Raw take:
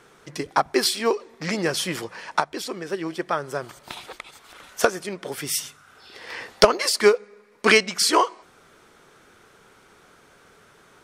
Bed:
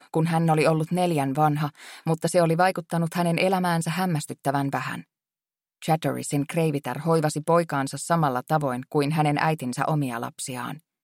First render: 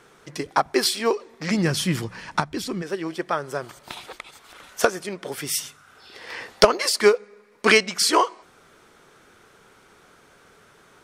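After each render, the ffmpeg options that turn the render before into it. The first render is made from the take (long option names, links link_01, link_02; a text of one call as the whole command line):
ffmpeg -i in.wav -filter_complex "[0:a]asplit=3[link_01][link_02][link_03];[link_01]afade=type=out:start_time=1.5:duration=0.02[link_04];[link_02]asubboost=boost=10:cutoff=200,afade=type=in:start_time=1.5:duration=0.02,afade=type=out:start_time=2.81:duration=0.02[link_05];[link_03]afade=type=in:start_time=2.81:duration=0.02[link_06];[link_04][link_05][link_06]amix=inputs=3:normalize=0" out.wav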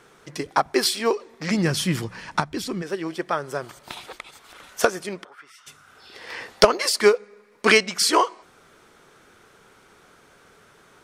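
ffmpeg -i in.wav -filter_complex "[0:a]asplit=3[link_01][link_02][link_03];[link_01]afade=type=out:start_time=5.23:duration=0.02[link_04];[link_02]bandpass=frequency=1300:width_type=q:width=4.5,afade=type=in:start_time=5.23:duration=0.02,afade=type=out:start_time=5.66:duration=0.02[link_05];[link_03]afade=type=in:start_time=5.66:duration=0.02[link_06];[link_04][link_05][link_06]amix=inputs=3:normalize=0" out.wav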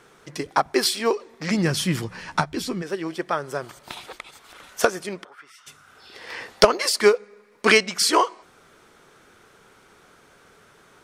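ffmpeg -i in.wav -filter_complex "[0:a]asettb=1/sr,asplit=3[link_01][link_02][link_03];[link_01]atrim=end=2.104[link_04];[link_02]atrim=start=2.1:end=2.74,asetpts=PTS-STARTPTS,afade=type=in:duration=0.004:curve=qsin,afade=type=out:start_time=0.636:duration=0.004:curve=qsin,asplit=2[link_05][link_06];[link_06]adelay=12,volume=-6dB[link_07];[link_05][link_07]amix=inputs=2:normalize=0,atrim=end_sample=28224[link_08];[link_03]atrim=start=2.736[link_09];[link_04][link_08]acrossfade=duration=0.004:curve1=hsin:curve2=qsin[link_10];[link_10][link_09]acrossfade=duration=0.004:curve1=qsin:curve2=hsin" out.wav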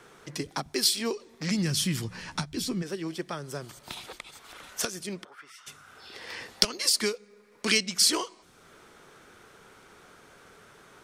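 ffmpeg -i in.wav -filter_complex "[0:a]acrossover=split=290|3000[link_01][link_02][link_03];[link_02]acompressor=threshold=-46dB:ratio=2[link_04];[link_01][link_04][link_03]amix=inputs=3:normalize=0,acrossover=split=1000[link_05][link_06];[link_05]alimiter=limit=-21.5dB:level=0:latency=1:release=233[link_07];[link_07][link_06]amix=inputs=2:normalize=0" out.wav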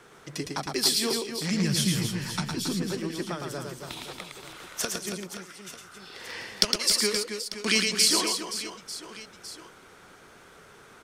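ffmpeg -i in.wav -af "aecho=1:1:110|275|522.5|893.8|1451:0.631|0.398|0.251|0.158|0.1" out.wav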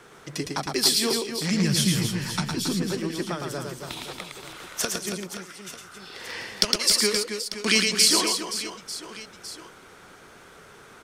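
ffmpeg -i in.wav -af "volume=3dB,alimiter=limit=-3dB:level=0:latency=1" out.wav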